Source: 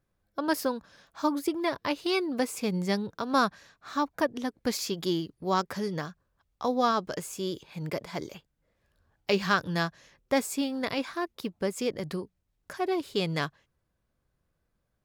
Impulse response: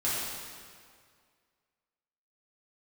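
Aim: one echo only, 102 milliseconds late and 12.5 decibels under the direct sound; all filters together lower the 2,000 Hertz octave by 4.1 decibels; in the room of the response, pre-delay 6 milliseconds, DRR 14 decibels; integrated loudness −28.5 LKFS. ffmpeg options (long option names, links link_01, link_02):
-filter_complex "[0:a]equalizer=frequency=2000:width_type=o:gain=-5.5,aecho=1:1:102:0.237,asplit=2[link_01][link_02];[1:a]atrim=start_sample=2205,adelay=6[link_03];[link_02][link_03]afir=irnorm=-1:irlink=0,volume=-23dB[link_04];[link_01][link_04]amix=inputs=2:normalize=0,volume=2.5dB"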